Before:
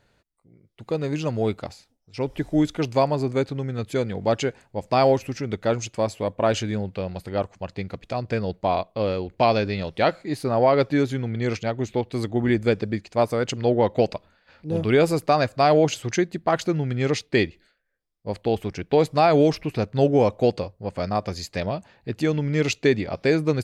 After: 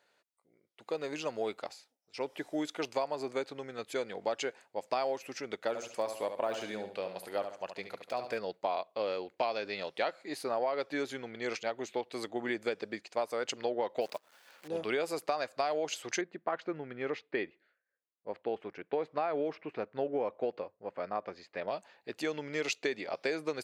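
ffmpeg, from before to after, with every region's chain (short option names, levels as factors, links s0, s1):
-filter_complex "[0:a]asettb=1/sr,asplit=3[s0][s1][s2];[s0]atrim=end=5.684[s3];[s1]atrim=start=5.68:end=8.39,asetpts=PTS-STARTPTS,afade=t=in:d=0.004:c=qsin,afade=t=out:st=2.706:d=0.004:c=qsin,deesser=1,equalizer=f=11000:t=o:w=0.46:g=12,aecho=1:1:71|142|213|284:0.355|0.121|0.041|0.0139,atrim=end_sample=119511[s4];[s2]atrim=start=8.386[s5];[s3][s4]acrossfade=d=0.004:c1=hsin:c2=qsin[s6];[s6][s5]acrossfade=d=0.004:c1=qsin:c2=hsin,asettb=1/sr,asplit=3[s7][s8][s9];[s7]atrim=end=14.014[s10];[s8]atrim=start=14.01:end=14.68,asetpts=PTS-STARTPTS,afade=t=in:d=0.004:c=qsin,afade=t=out:st=0.666:d=0.004:c=qsin,acrusher=bits=8:dc=4:mix=0:aa=0.000001,acompressor=mode=upward:threshold=0.00794:ratio=2.5:attack=3.2:release=140:knee=2.83:detection=peak[s11];[s9]atrim=start=14.676[s12];[s10][s11]acrossfade=d=0.004:c1=hsin:c2=qsin[s13];[s13][s12]acrossfade=d=0.004:c1=qsin:c2=hsin,asettb=1/sr,asplit=3[s14][s15][s16];[s14]atrim=end=16.214[s17];[s15]atrim=start=16.21:end=21.68,asetpts=PTS-STARTPTS,afade=t=in:d=0.004:c=qsin,afade=t=out:st=5.466:d=0.004:c=qsin,lowpass=1800,equalizer=f=740:w=1.3:g=-4[s18];[s16]atrim=start=21.676[s19];[s17][s18]acrossfade=d=0.004:c1=hsin:c2=qsin[s20];[s20][s19]acrossfade=d=0.004:c1=qsin:c2=hsin,highpass=480,acompressor=threshold=0.0631:ratio=6,volume=0.596"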